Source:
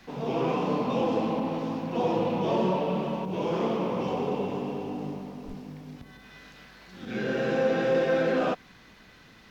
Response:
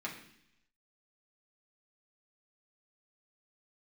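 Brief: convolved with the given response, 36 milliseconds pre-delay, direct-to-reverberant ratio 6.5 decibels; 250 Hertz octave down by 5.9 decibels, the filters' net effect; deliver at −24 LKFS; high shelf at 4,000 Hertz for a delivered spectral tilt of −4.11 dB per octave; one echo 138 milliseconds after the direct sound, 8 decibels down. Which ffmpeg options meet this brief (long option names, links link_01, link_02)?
-filter_complex "[0:a]equalizer=frequency=250:width_type=o:gain=-8,highshelf=frequency=4000:gain=5,aecho=1:1:138:0.398,asplit=2[link_01][link_02];[1:a]atrim=start_sample=2205,adelay=36[link_03];[link_02][link_03]afir=irnorm=-1:irlink=0,volume=-8.5dB[link_04];[link_01][link_04]amix=inputs=2:normalize=0,volume=5dB"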